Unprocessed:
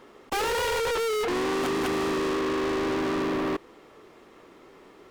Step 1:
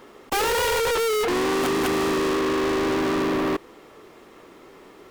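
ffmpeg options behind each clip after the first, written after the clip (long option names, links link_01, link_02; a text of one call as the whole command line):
ffmpeg -i in.wav -af "highshelf=frequency=10000:gain=7.5,volume=4dB" out.wav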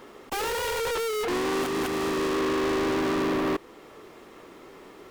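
ffmpeg -i in.wav -af "alimiter=limit=-23dB:level=0:latency=1:release=381" out.wav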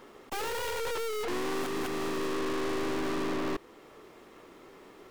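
ffmpeg -i in.wav -af "aeval=exprs='(tanh(28.2*val(0)+0.7)-tanh(0.7))/28.2':channel_layout=same,volume=-1dB" out.wav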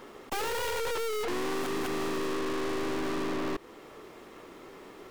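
ffmpeg -i in.wav -af "acompressor=threshold=-33dB:ratio=6,volume=4dB" out.wav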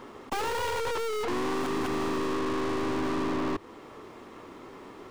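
ffmpeg -i in.wav -af "equalizer=frequency=100:width_type=o:width=0.67:gain=8,equalizer=frequency=250:width_type=o:width=0.67:gain=5,equalizer=frequency=1000:width_type=o:width=0.67:gain=5,equalizer=frequency=16000:width_type=o:width=0.67:gain=-10" out.wav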